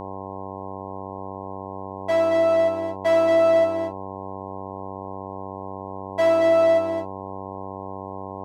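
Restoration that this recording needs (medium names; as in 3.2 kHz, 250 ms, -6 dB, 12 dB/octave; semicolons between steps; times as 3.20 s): de-hum 96.4 Hz, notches 11; inverse comb 226 ms -6.5 dB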